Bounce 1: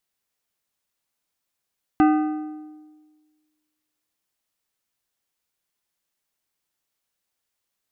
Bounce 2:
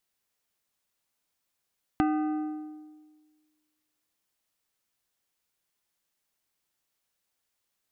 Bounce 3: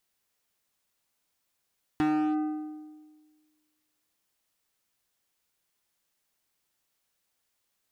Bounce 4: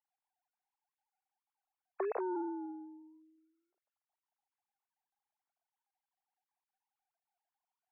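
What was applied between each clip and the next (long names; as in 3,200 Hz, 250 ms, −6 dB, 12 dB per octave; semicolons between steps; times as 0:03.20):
downward compressor 3 to 1, threshold −26 dBFS, peak gain reduction 9.5 dB
gain into a clipping stage and back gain 25 dB; level +2.5 dB
three sine waves on the formant tracks; resonant band-pass 680 Hz, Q 2.3; level +1 dB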